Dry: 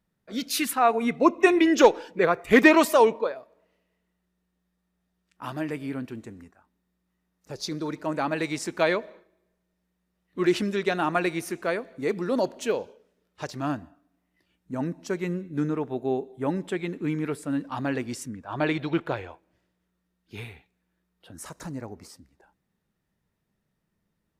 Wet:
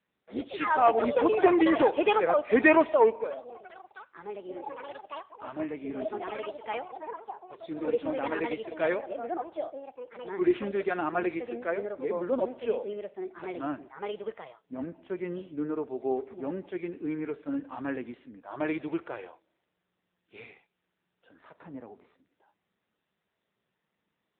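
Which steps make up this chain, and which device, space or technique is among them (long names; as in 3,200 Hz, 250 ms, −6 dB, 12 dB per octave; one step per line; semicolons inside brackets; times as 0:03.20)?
0:03.22–0:05.44: mains-hum notches 50/100 Hz
harmonic and percussive parts rebalanced percussive −11 dB
delay with pitch and tempo change per echo 87 ms, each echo +5 semitones, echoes 3, each echo −6 dB
telephone (band-pass filter 350–3,500 Hz; soft clipping −12 dBFS, distortion −19 dB; level +1.5 dB; AMR narrowband 7.95 kbit/s 8,000 Hz)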